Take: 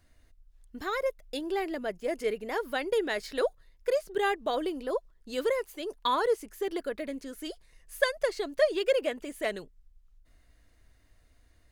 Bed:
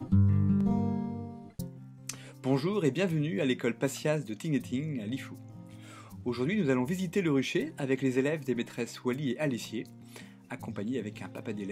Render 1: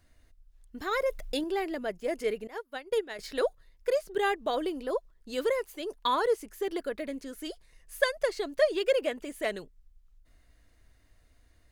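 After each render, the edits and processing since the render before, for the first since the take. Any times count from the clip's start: 0.91–1.44 s: level flattener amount 50%; 2.47–3.19 s: upward expansion 2.5:1, over -43 dBFS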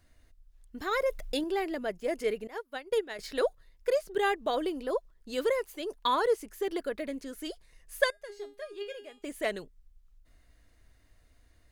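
8.10–9.24 s: feedback comb 410 Hz, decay 0.31 s, mix 90%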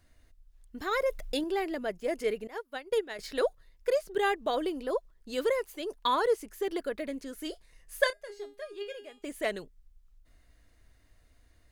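7.38–8.34 s: doubling 29 ms -13 dB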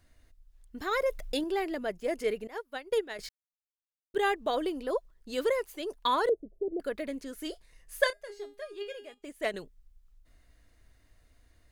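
3.29–4.14 s: mute; 6.29–6.80 s: elliptic low-pass 640 Hz, stop band 50 dB; 9.14–9.54 s: upward expansion, over -49 dBFS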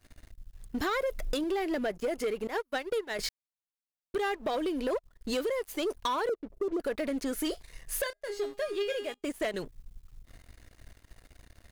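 compression 10:1, threshold -37 dBFS, peak gain reduction 19 dB; waveshaping leveller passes 3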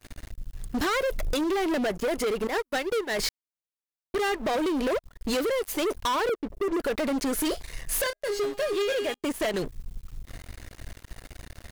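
waveshaping leveller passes 3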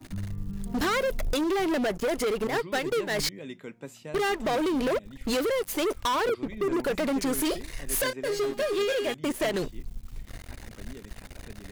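add bed -11.5 dB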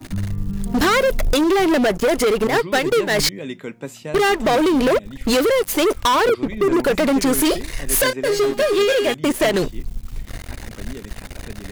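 trim +10 dB

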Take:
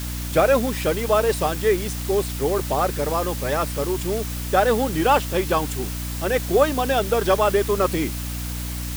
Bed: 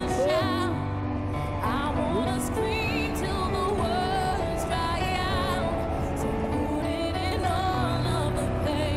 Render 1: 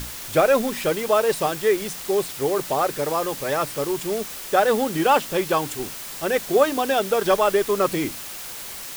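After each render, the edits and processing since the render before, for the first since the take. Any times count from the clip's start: hum notches 60/120/180/240/300 Hz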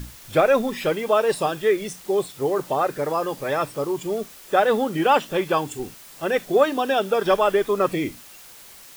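noise print and reduce 10 dB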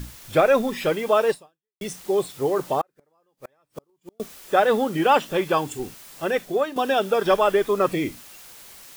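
1.30–1.81 s: fade out exponential; 2.81–4.20 s: inverted gate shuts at -19 dBFS, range -42 dB; 6.23–6.76 s: fade out, to -10 dB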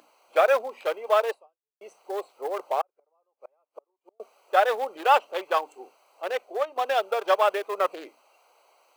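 local Wiener filter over 25 samples; high-pass 550 Hz 24 dB/octave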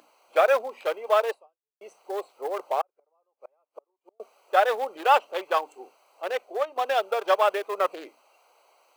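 no audible change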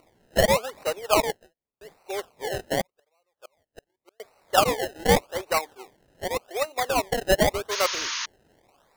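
decimation with a swept rate 26×, swing 100% 0.86 Hz; 7.71–8.26 s: painted sound noise 900–6800 Hz -30 dBFS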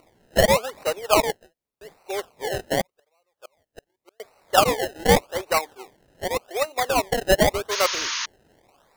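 trim +2.5 dB

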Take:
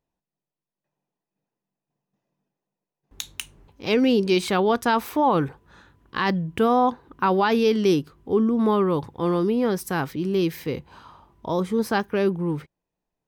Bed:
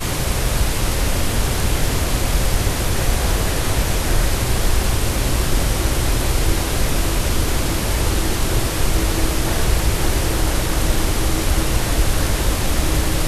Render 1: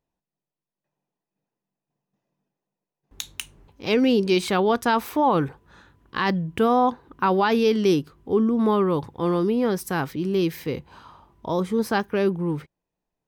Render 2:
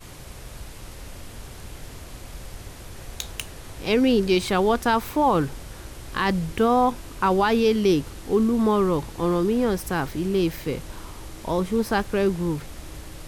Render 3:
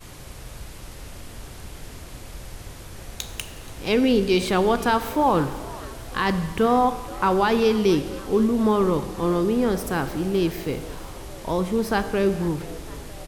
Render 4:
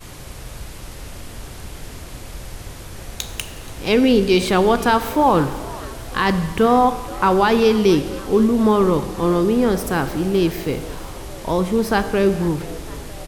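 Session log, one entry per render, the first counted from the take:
no audible change
add bed -20.5 dB
frequency-shifting echo 478 ms, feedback 59%, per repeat +100 Hz, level -20 dB; Schroeder reverb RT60 1.4 s, combs from 29 ms, DRR 11 dB
trim +4.5 dB

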